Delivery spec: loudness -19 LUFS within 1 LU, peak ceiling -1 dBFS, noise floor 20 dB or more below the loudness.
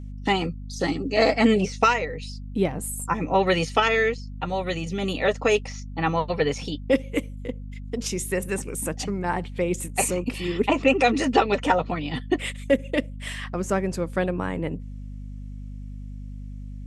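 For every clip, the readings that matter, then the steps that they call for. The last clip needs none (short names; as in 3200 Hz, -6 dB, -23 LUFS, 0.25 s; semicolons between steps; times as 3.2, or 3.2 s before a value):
hum 50 Hz; harmonics up to 250 Hz; hum level -33 dBFS; loudness -24.5 LUFS; peak -5.5 dBFS; loudness target -19.0 LUFS
-> de-hum 50 Hz, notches 5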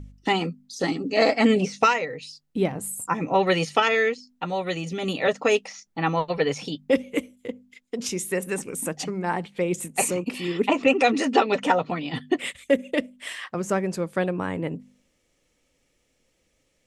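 hum none; loudness -25.0 LUFS; peak -4.5 dBFS; loudness target -19.0 LUFS
-> gain +6 dB; limiter -1 dBFS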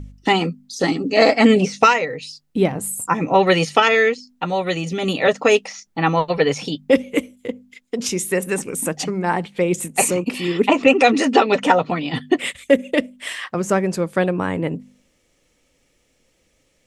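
loudness -19.0 LUFS; peak -1.0 dBFS; noise floor -64 dBFS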